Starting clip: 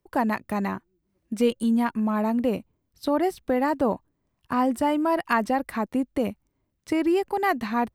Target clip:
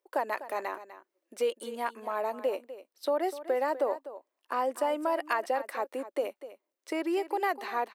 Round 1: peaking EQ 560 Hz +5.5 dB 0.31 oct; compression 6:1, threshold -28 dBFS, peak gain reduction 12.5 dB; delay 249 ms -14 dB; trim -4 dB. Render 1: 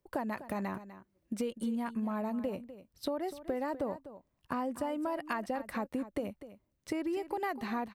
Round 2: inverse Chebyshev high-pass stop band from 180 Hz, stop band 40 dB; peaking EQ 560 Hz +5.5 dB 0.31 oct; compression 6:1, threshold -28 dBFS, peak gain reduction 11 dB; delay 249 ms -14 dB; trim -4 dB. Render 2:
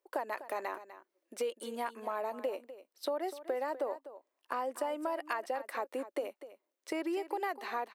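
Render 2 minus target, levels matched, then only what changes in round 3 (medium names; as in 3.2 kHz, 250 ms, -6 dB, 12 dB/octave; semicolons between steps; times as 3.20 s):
compression: peak gain reduction +7 dB
change: compression 6:1, threshold -19.5 dBFS, peak gain reduction 4 dB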